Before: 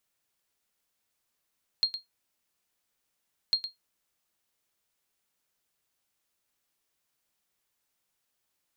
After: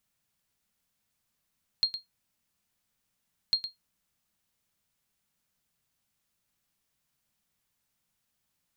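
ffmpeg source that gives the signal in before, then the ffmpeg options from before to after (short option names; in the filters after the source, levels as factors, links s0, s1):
-f lavfi -i "aevalsrc='0.158*(sin(2*PI*4230*mod(t,1.7))*exp(-6.91*mod(t,1.7)/0.15)+0.282*sin(2*PI*4230*max(mod(t,1.7)-0.11,0))*exp(-6.91*max(mod(t,1.7)-0.11,0)/0.15))':d=3.4:s=44100"
-af "lowshelf=f=260:t=q:w=1.5:g=7"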